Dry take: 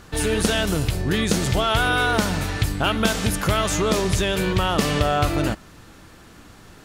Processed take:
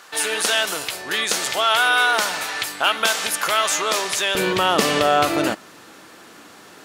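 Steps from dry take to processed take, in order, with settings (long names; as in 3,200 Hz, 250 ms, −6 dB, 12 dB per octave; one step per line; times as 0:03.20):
high-pass filter 760 Hz 12 dB per octave, from 0:04.35 310 Hz
level +5 dB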